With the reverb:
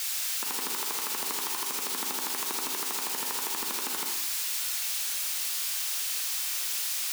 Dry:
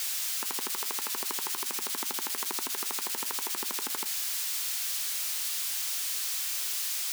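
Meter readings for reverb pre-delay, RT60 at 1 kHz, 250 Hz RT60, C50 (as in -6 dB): 33 ms, 0.85 s, 0.95 s, 3.0 dB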